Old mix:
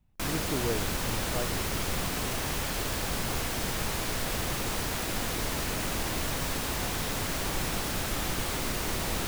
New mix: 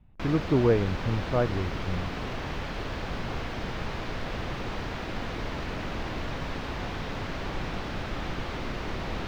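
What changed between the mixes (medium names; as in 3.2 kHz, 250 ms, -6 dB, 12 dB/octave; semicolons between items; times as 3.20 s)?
speech +10.5 dB; master: add distance through air 240 m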